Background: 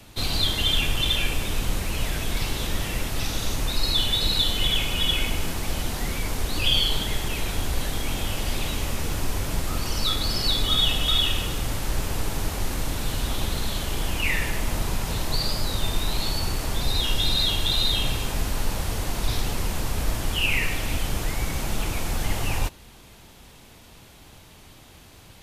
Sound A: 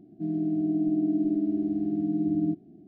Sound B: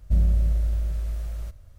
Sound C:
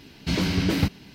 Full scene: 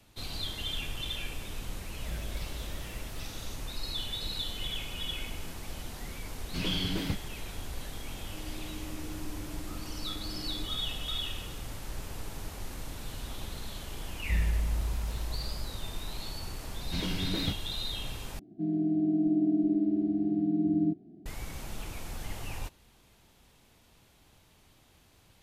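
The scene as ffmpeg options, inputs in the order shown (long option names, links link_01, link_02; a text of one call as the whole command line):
ffmpeg -i bed.wav -i cue0.wav -i cue1.wav -i cue2.wav -filter_complex "[2:a]asplit=2[link_01][link_02];[3:a]asplit=2[link_03][link_04];[1:a]asplit=2[link_05][link_06];[0:a]volume=-13dB[link_07];[link_01]bass=frequency=250:gain=-15,treble=frequency=4000:gain=0[link_08];[link_05]lowshelf=frequency=360:gain=-5.5[link_09];[link_06]aresample=11025,aresample=44100[link_10];[link_07]asplit=2[link_11][link_12];[link_11]atrim=end=18.394[link_13];[link_10]atrim=end=2.87,asetpts=PTS-STARTPTS,volume=-1dB[link_14];[link_12]atrim=start=21.256[link_15];[link_08]atrim=end=1.78,asetpts=PTS-STARTPTS,volume=-5dB,afade=type=in:duration=0.004:curve=hsin,afade=type=out:start_time=1.776:duration=0.004:curve=hsin,adelay=1950[link_16];[link_03]atrim=end=1.14,asetpts=PTS-STARTPTS,volume=-10.5dB,afade=type=in:duration=0.004:curve=hsin,afade=type=out:start_time=1.136:duration=0.004:curve=hsin,adelay=6270[link_17];[link_09]atrim=end=2.87,asetpts=PTS-STARTPTS,volume=-16dB,afade=type=in:duration=0.004:curve=hsin,afade=type=out:start_time=2.866:duration=0.004:curve=hsin,adelay=8120[link_18];[link_02]atrim=end=1.78,asetpts=PTS-STARTPTS,volume=-8.5dB,afade=type=in:duration=0.004:curve=hsin,afade=type=out:start_time=1.776:duration=0.004:curve=hsin,adelay=14190[link_19];[link_04]atrim=end=1.14,asetpts=PTS-STARTPTS,volume=-10.5dB,afade=type=in:duration=0.004:curve=hsin,afade=type=out:start_time=1.136:duration=0.004:curve=hsin,adelay=16650[link_20];[link_13][link_14]acrossfade=duration=0.004:curve1=hsin:curve2=hsin[link_21];[link_21][link_15]acrossfade=duration=0.004:curve1=hsin:curve2=hsin[link_22];[link_22][link_16][link_17][link_18][link_19][link_20]amix=inputs=6:normalize=0" out.wav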